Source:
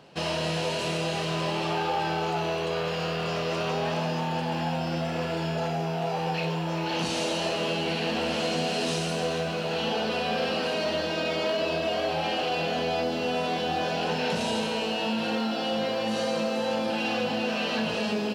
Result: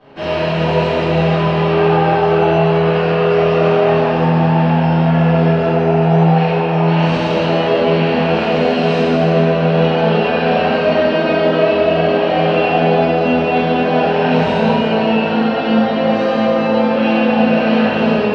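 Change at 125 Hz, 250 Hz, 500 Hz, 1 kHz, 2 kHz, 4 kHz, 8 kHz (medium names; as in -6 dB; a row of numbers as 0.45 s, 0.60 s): +17.5 dB, +16.0 dB, +15.0 dB, +13.0 dB, +11.0 dB, +5.0 dB, no reading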